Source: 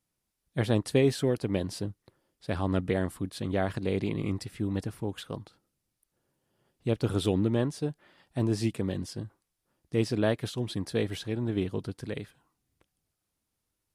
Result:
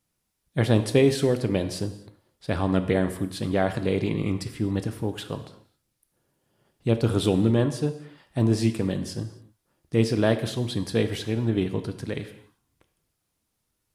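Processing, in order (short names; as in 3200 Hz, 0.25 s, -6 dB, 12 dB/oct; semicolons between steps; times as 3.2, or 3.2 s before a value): non-linear reverb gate 0.3 s falling, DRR 8.5 dB; gain +4.5 dB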